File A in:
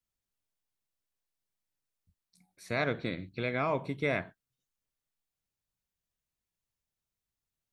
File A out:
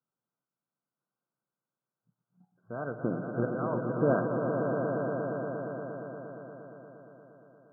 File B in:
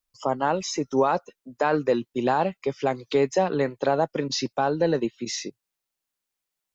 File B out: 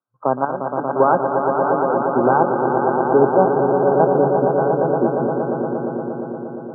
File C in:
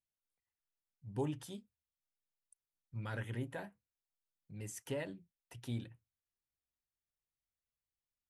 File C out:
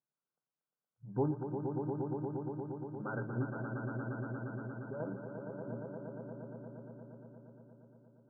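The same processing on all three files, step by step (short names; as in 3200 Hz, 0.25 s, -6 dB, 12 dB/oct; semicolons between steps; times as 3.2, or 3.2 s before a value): chopper 1 Hz, depth 65%, duty 45%; swelling echo 0.117 s, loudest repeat 5, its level -6.5 dB; in parallel at -11 dB: sample gate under -23.5 dBFS; on the sum: FFT band-pass 110–1600 Hz; gain +4.5 dB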